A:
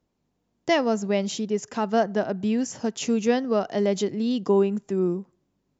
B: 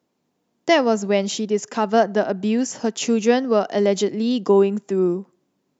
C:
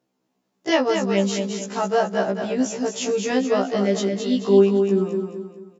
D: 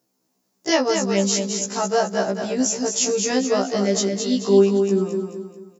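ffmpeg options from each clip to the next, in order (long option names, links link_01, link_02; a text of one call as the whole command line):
ffmpeg -i in.wav -af "highpass=200,volume=5.5dB" out.wav
ffmpeg -i in.wav -af "aecho=1:1:217|434|651|868|1085:0.501|0.195|0.0762|0.0297|0.0116,afftfilt=real='re*1.73*eq(mod(b,3),0)':imag='im*1.73*eq(mod(b,3),0)':win_size=2048:overlap=0.75" out.wav
ffmpeg -i in.wav -af "aexciter=amount=4.4:drive=2.5:freq=4500" out.wav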